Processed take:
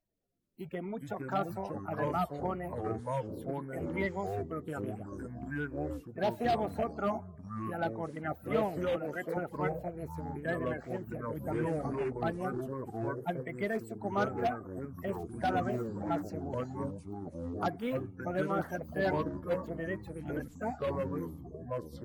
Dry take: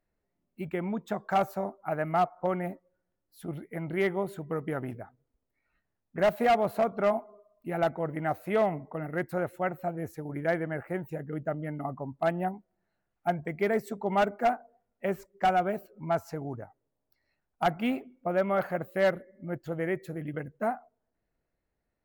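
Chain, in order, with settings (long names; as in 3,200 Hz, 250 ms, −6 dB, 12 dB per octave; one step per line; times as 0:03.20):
spectral magnitudes quantised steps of 30 dB
delay with pitch and tempo change per echo 215 ms, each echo −5 semitones, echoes 3
0:08.96–0:09.37: Bessel high-pass filter 250 Hz, order 2
level −6 dB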